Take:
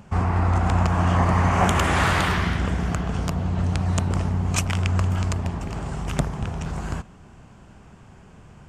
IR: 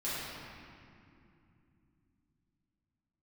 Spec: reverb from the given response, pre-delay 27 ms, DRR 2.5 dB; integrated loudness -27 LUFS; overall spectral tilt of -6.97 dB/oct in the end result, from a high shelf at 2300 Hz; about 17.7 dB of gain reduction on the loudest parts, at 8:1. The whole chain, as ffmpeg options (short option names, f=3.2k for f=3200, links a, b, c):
-filter_complex "[0:a]highshelf=f=2.3k:g=-7.5,acompressor=threshold=-35dB:ratio=8,asplit=2[a][b];[1:a]atrim=start_sample=2205,adelay=27[c];[b][c]afir=irnorm=-1:irlink=0,volume=-8.5dB[d];[a][d]amix=inputs=2:normalize=0,volume=10dB"